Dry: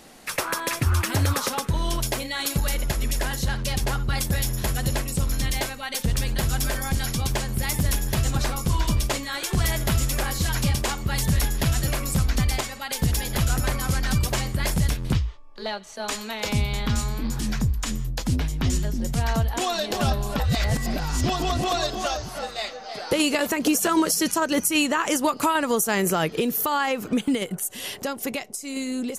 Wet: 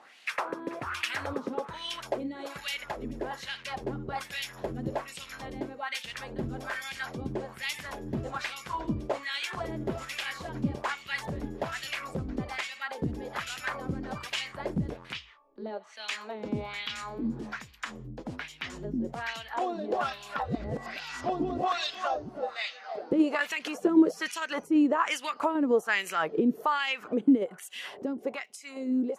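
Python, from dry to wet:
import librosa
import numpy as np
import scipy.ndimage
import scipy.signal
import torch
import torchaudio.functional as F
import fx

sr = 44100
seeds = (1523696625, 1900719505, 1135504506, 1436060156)

y = fx.wah_lfo(x, sr, hz=1.2, low_hz=270.0, high_hz=2900.0, q=2.3)
y = y * 10.0 ** (3.0 / 20.0)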